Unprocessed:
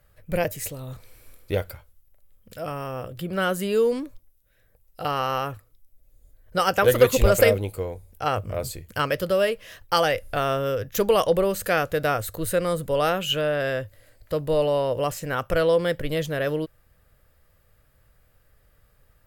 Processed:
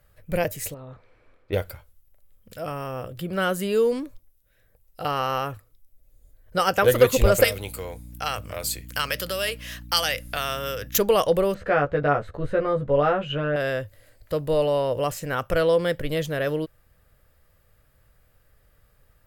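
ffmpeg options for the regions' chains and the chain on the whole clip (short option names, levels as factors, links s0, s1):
-filter_complex "[0:a]asettb=1/sr,asplit=3[s0][s1][s2];[s0]atrim=end=0.744[s3];[s1]atrim=start=0.74:end=1.53,asetpts=PTS-STARTPTS,afade=t=in:d=0.004:c=qsin,afade=t=out:st=0.786:d=0.004:c=qsin,lowpass=1800,lowshelf=f=190:g=-10[s4];[s2]atrim=start=1.526[s5];[s3][s4]acrossfade=d=0.004:c1=hsin:c2=qsin[s6];[s6][s5]acrossfade=d=0.004:c1=qsin:c2=hsin,asettb=1/sr,asplit=3[s7][s8][s9];[s7]atrim=end=7.444[s10];[s8]atrim=start=7.44:end=10.98,asetpts=PTS-STARTPTS,afade=t=in:d=0.004:c=qsin,afade=t=out:st=3.536:d=0.004:c=qsin,acrossover=split=150|3000[s11][s12][s13];[s12]acompressor=threshold=0.0447:ratio=3:attack=3.2:release=140:knee=2.83:detection=peak[s14];[s11][s14][s13]amix=inputs=3:normalize=0,tiltshelf=f=740:g=-8,aeval=exprs='val(0)+0.01*(sin(2*PI*60*n/s)+sin(2*PI*2*60*n/s)/2+sin(2*PI*3*60*n/s)/3+sin(2*PI*4*60*n/s)/4+sin(2*PI*5*60*n/s)/5)':c=same[s15];[s9]atrim=start=10.976[s16];[s10][s15]acrossfade=d=0.004:c1=hsin:c2=qsin[s17];[s17][s16]acrossfade=d=0.004:c1=qsin:c2=hsin,asettb=1/sr,asplit=3[s18][s19][s20];[s18]atrim=end=11.544[s21];[s19]atrim=start=11.54:end=13.56,asetpts=PTS-STARTPTS,afade=t=in:d=0.004:c=qsin,afade=t=out:st=2.016:d=0.004:c=qsin,lowpass=1700,asplit=2[s22][s23];[s23]adelay=14,volume=0.75[s24];[s22][s24]amix=inputs=2:normalize=0,atrim=end_sample=89082[s25];[s20]atrim=start=13.556[s26];[s21][s25]acrossfade=d=0.004:c1=hsin:c2=qsin[s27];[s27][s26]acrossfade=d=0.004:c1=qsin:c2=hsin"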